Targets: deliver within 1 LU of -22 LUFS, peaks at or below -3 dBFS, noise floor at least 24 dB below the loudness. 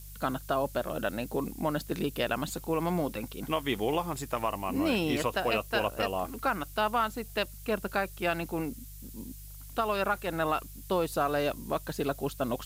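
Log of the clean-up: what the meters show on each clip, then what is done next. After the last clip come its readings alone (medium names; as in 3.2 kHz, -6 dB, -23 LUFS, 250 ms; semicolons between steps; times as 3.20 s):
hum 50 Hz; highest harmonic 150 Hz; hum level -44 dBFS; noise floor -46 dBFS; noise floor target -56 dBFS; loudness -31.5 LUFS; peak level -14.5 dBFS; loudness target -22.0 LUFS
-> de-hum 50 Hz, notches 3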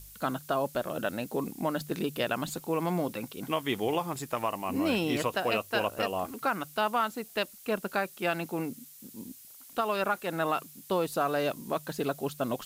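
hum not found; noise floor -51 dBFS; noise floor target -56 dBFS
-> noise reduction 6 dB, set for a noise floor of -51 dBFS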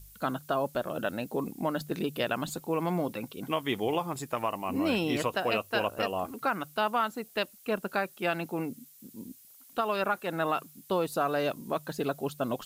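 noise floor -56 dBFS; loudness -31.5 LUFS; peak level -14.0 dBFS; loudness target -22.0 LUFS
-> trim +9.5 dB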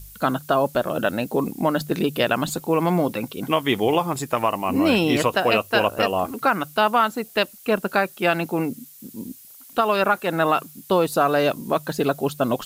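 loudness -22.0 LUFS; peak level -4.5 dBFS; noise floor -46 dBFS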